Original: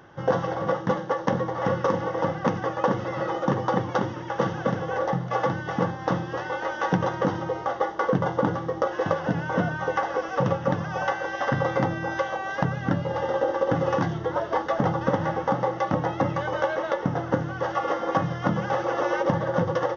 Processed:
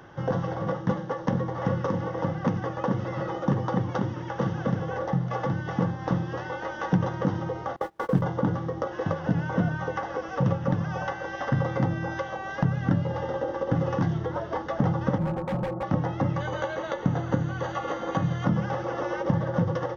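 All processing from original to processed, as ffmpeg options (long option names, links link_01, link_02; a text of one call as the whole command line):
ffmpeg -i in.wav -filter_complex "[0:a]asettb=1/sr,asplit=3[link_01][link_02][link_03];[link_01]atrim=end=7.764[link_04];[link_02]atrim=start=7.76:end=8.22,asetpts=PTS-STARTPTS,afade=type=in:duration=0.004:curve=qsin,afade=type=out:start_time=0.456:duration=0.004:curve=qsin,aeval=exprs='val(0)+0.5*0.0141*sgn(val(0))':channel_layout=same,agate=range=-28dB:threshold=-26dB:ratio=16:release=100:detection=peak[link_05];[link_03]atrim=start=8.216[link_06];[link_04][link_05]acrossfade=duration=0.004:curve1=hsin:curve2=qsin[link_07];[link_07][link_06]acrossfade=duration=0.004:curve1=qsin:curve2=hsin,asettb=1/sr,asplit=3[link_08][link_09][link_10];[link_08]atrim=end=15.184[link_11];[link_09]atrim=start=15.18:end=15.83,asetpts=PTS-STARTPTS,afade=type=in:duration=0.004:curve=qsin,afade=type=out:start_time=0.646:duration=0.004:curve=qsin,lowpass=frequency=1100:width=0.5412,lowpass=frequency=1100:width=1.3066,aecho=1:1:5.5:0.65,atrim=end_sample=28665,volume=23dB,asoftclip=hard,volume=-23dB[link_12];[link_10]atrim=start=15.826[link_13];[link_11][link_12]acrossfade=duration=0.004:curve1=hsin:curve2=qsin[link_14];[link_14][link_13]acrossfade=duration=0.004:curve1=qsin:curve2=hsin,asettb=1/sr,asplit=3[link_15][link_16][link_17];[link_15]atrim=end=16.404[link_18];[link_16]atrim=start=16.4:end=18.45,asetpts=PTS-STARTPTS,afade=type=in:duration=0.004:curve=qsin,afade=type=out:start_time=2.046:duration=0.004:curve=qsin,asuperstop=centerf=5300:order=4:qfactor=5.1,highshelf=frequency=4300:gain=12[link_19];[link_17]atrim=start=18.446[link_20];[link_18][link_19]acrossfade=duration=0.004:curve1=hsin:curve2=qsin[link_21];[link_21][link_20]acrossfade=duration=0.004:curve1=qsin:curve2=hsin,lowshelf=frequency=150:gain=3.5,acrossover=split=260[link_22][link_23];[link_23]acompressor=threshold=-43dB:ratio=1.5[link_24];[link_22][link_24]amix=inputs=2:normalize=0,volume=1.5dB" out.wav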